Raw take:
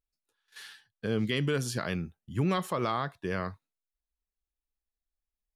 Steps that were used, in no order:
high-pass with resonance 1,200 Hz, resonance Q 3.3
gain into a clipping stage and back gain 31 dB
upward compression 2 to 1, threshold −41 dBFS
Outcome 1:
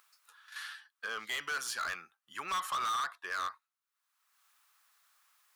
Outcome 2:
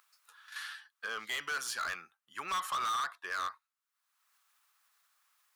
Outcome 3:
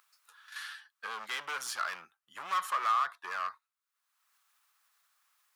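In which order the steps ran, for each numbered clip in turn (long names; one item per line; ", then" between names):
high-pass with resonance, then upward compression, then gain into a clipping stage and back
upward compression, then high-pass with resonance, then gain into a clipping stage and back
upward compression, then gain into a clipping stage and back, then high-pass with resonance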